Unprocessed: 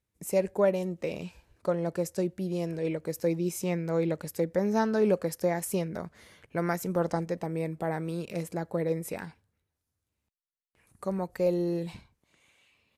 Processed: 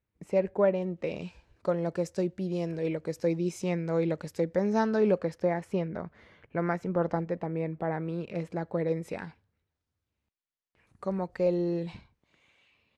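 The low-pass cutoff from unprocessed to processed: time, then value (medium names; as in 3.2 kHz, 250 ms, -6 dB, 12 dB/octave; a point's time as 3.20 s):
0.84 s 2.7 kHz
1.25 s 5.7 kHz
4.84 s 5.7 kHz
5.55 s 2.5 kHz
8.10 s 2.5 kHz
8.90 s 4.5 kHz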